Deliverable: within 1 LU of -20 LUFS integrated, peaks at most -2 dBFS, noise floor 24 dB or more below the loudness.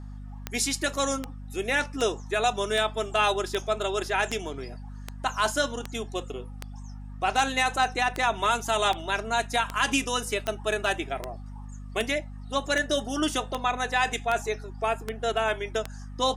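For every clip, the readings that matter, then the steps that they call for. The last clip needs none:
clicks 21; hum 50 Hz; harmonics up to 250 Hz; hum level -37 dBFS; loudness -27.5 LUFS; peak -11.0 dBFS; loudness target -20.0 LUFS
-> de-click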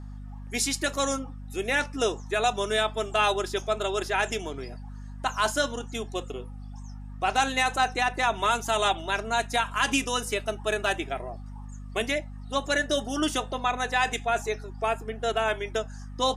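clicks 0; hum 50 Hz; harmonics up to 250 Hz; hum level -37 dBFS
-> notches 50/100/150/200/250 Hz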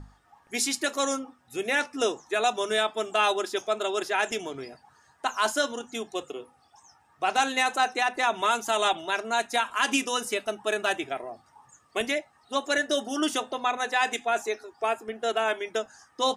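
hum none; loudness -27.5 LUFS; peak -11.0 dBFS; loudness target -20.0 LUFS
-> gain +7.5 dB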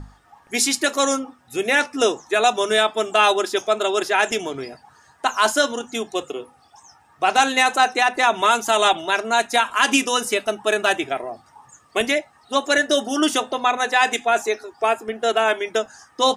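loudness -20.0 LUFS; peak -3.5 dBFS; noise floor -55 dBFS

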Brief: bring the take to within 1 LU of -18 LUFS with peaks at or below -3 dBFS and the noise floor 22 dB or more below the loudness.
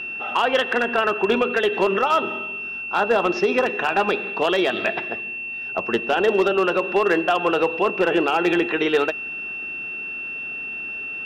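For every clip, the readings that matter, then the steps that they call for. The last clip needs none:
clipped 0.5%; flat tops at -11.0 dBFS; steady tone 2700 Hz; tone level -28 dBFS; loudness -21.5 LUFS; peak -11.0 dBFS; loudness target -18.0 LUFS
-> clip repair -11 dBFS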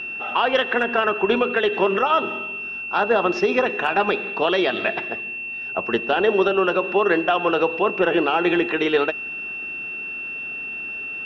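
clipped 0.0%; steady tone 2700 Hz; tone level -28 dBFS
-> notch 2700 Hz, Q 30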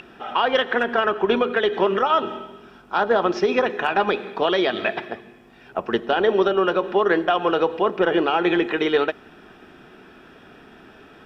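steady tone none; loudness -21.0 LUFS; peak -7.0 dBFS; loudness target -18.0 LUFS
-> gain +3 dB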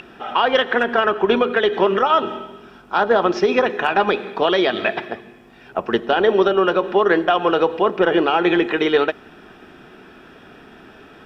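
loudness -18.0 LUFS; peak -4.0 dBFS; noise floor -45 dBFS

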